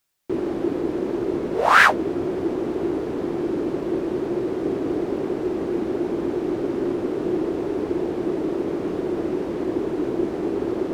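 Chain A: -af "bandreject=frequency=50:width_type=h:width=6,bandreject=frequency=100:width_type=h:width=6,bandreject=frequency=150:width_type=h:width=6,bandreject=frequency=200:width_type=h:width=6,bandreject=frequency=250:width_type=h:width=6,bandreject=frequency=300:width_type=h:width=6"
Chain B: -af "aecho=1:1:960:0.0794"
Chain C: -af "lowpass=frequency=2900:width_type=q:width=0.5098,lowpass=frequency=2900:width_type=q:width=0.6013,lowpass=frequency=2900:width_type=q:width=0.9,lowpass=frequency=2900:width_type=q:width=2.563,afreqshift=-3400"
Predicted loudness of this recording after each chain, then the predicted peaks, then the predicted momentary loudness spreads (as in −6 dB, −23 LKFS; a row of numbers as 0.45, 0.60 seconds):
−24.0, −23.5, −20.5 LKFS; −1.5, −1.5, −1.5 dBFS; 3, 3, 3 LU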